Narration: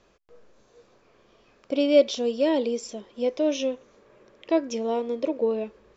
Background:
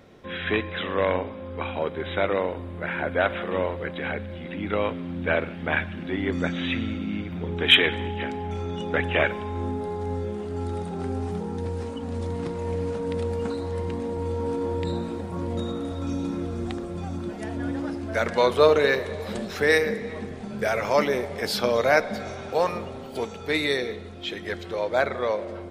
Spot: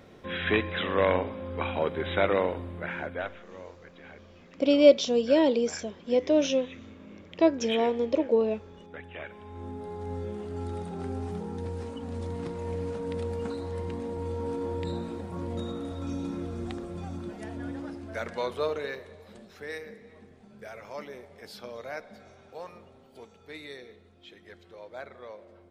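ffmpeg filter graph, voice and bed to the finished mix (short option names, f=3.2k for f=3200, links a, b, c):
-filter_complex "[0:a]adelay=2900,volume=1dB[a];[1:a]volume=13.5dB,afade=t=out:st=2.45:d=0.94:silence=0.11885,afade=t=in:st=9.24:d=1.04:silence=0.199526,afade=t=out:st=16.99:d=2.28:silence=0.211349[b];[a][b]amix=inputs=2:normalize=0"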